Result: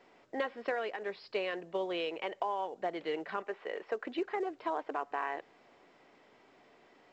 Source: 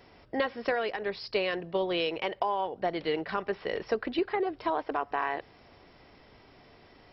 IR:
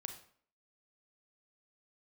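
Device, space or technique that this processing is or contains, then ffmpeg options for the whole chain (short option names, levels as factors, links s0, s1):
telephone: -filter_complex "[0:a]asettb=1/sr,asplit=3[s0][s1][s2];[s0]atrim=end=3.424[s3];[s1]atrim=start=3.42:end=4.05,asetpts=PTS-STARTPTS,afade=t=in:d=0.004:c=qsin,afade=t=out:st=0.626:d=0.004:c=qsin,bass=f=250:g=-12,treble=f=4000:g=-8[s4];[s2]atrim=start=4.046[s5];[s3][s4]acrossfade=d=0.004:c1=hsin:c2=qsin[s6];[s6][s5]acrossfade=d=0.004:c1=qsin:c2=hsin,highpass=250,lowpass=3200,volume=0.562" -ar 16000 -c:a pcm_mulaw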